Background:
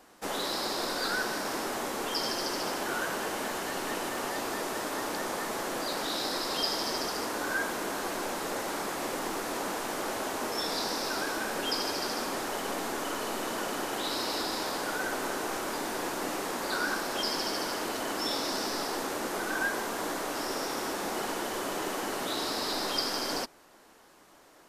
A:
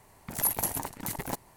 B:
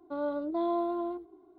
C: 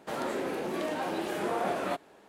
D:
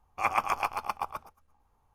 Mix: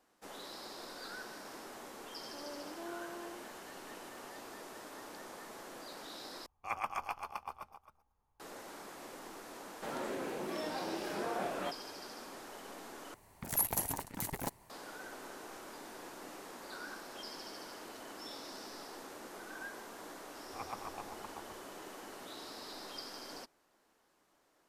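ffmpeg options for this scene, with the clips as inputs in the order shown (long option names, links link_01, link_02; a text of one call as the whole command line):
ffmpeg -i bed.wav -i cue0.wav -i cue1.wav -i cue2.wav -i cue3.wav -filter_complex "[4:a]asplit=2[link_01][link_02];[0:a]volume=-15.5dB[link_03];[link_01]aecho=1:1:269:0.251[link_04];[link_02]tiltshelf=frequency=970:gain=9[link_05];[link_03]asplit=3[link_06][link_07][link_08];[link_06]atrim=end=6.464[link_09];[link_04]atrim=end=1.94,asetpts=PTS-STARTPTS,volume=-10.5dB[link_10];[link_07]atrim=start=8.396:end=13.144[link_11];[1:a]atrim=end=1.56,asetpts=PTS-STARTPTS,volume=-4.5dB[link_12];[link_08]atrim=start=14.696[link_13];[2:a]atrim=end=1.58,asetpts=PTS-STARTPTS,volume=-16dB,afade=type=in:duration=0.004:curve=hsin,afade=type=out:start_time=1.576:duration=0.004:curve=hsin,adelay=2230[link_14];[3:a]atrim=end=2.28,asetpts=PTS-STARTPTS,volume=-7dB,afade=type=in:duration=0.004:curve=hsin,afade=type=out:start_time=2.276:duration=0.004:curve=hsin,adelay=9750[link_15];[link_05]atrim=end=1.94,asetpts=PTS-STARTPTS,volume=-17dB,afade=type=in:duration=0.004:curve=hsin,afade=type=out:start_time=1.936:duration=0.004:curve=hsin,adelay=20350[link_16];[link_09][link_10]acrossfade=duration=0.004:curve1=hsin:curve2=hsin[link_17];[link_17][link_11]acrossfade=duration=0.004:curve1=hsin:curve2=hsin[link_18];[link_18][link_12]acrossfade=duration=0.004:curve1=hsin:curve2=hsin[link_19];[link_19][link_13]acrossfade=duration=0.004:curve1=hsin:curve2=hsin[link_20];[link_20][link_14][link_15][link_16]amix=inputs=4:normalize=0" out.wav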